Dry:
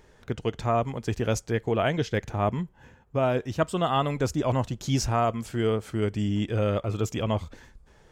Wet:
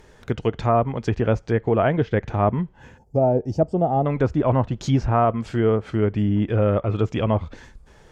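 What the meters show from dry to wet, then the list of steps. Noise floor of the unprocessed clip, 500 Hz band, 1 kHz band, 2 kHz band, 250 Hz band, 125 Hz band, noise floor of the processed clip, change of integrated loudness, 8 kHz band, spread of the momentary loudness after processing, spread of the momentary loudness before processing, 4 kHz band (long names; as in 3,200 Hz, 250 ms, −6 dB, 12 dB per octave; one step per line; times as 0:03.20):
−57 dBFS, +6.0 dB, +4.5 dB, +2.0 dB, +6.0 dB, +6.0 dB, −52 dBFS, +5.5 dB, can't be measured, 5 LU, 6 LU, −4.0 dB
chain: gain on a spectral selection 0:02.98–0:04.06, 920–4,400 Hz −19 dB
treble cut that deepens with the level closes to 1,600 Hz, closed at −22.5 dBFS
level +6 dB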